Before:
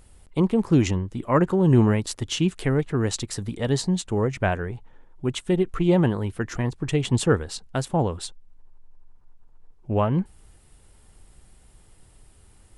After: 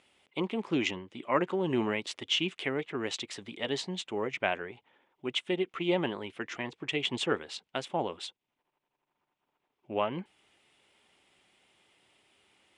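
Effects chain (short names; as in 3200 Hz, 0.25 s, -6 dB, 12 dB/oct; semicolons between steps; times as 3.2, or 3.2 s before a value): BPF 330–5500 Hz; band shelf 2700 Hz +8.5 dB 1 oct; notch 470 Hz, Q 13; gain -5.5 dB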